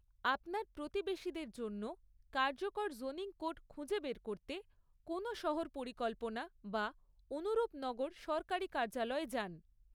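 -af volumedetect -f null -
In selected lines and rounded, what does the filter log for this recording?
mean_volume: -40.9 dB
max_volume: -20.7 dB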